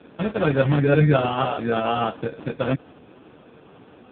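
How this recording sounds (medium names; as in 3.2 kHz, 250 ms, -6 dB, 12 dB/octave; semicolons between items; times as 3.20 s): aliases and images of a low sample rate 2 kHz, jitter 0%; AMR-NB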